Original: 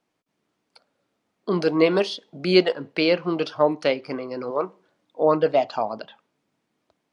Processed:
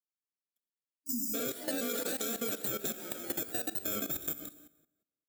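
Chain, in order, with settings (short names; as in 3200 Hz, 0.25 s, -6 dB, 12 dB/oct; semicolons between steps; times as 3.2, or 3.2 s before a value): FFT order left unsorted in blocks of 64 samples; bell 180 Hz +4.5 dB 0.33 oct; de-hum 75.05 Hz, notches 27; speed mistake 33 rpm record played at 45 rpm; echoes that change speed 92 ms, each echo +2 st, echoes 3, each echo -6 dB; gate -42 dBFS, range -29 dB; plate-style reverb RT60 0.89 s, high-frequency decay 0.85×, DRR 8.5 dB; level quantiser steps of 14 dB; spectral delete 0.98–1.34, 290–4800 Hz; compressor, threshold -31 dBFS, peak gain reduction 7 dB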